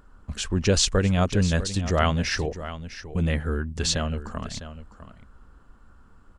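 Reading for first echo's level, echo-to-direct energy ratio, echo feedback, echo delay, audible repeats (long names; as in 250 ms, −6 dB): −13.0 dB, −13.0 dB, repeats not evenly spaced, 653 ms, 1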